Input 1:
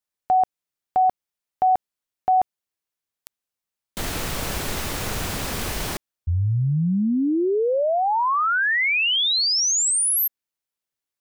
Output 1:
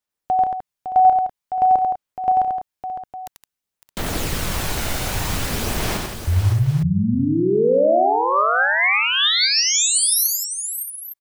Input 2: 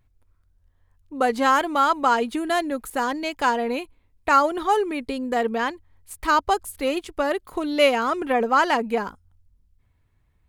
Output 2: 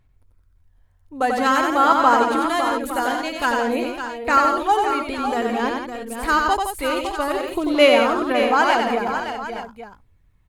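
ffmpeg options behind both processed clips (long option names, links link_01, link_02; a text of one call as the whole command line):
ffmpeg -i in.wav -filter_complex "[0:a]aphaser=in_gain=1:out_gain=1:delay=1.4:decay=0.35:speed=0.51:type=sinusoidal,asplit=2[link_01][link_02];[link_02]aecho=0:1:91|167|558|620|858:0.631|0.376|0.355|0.211|0.211[link_03];[link_01][link_03]amix=inputs=2:normalize=0" out.wav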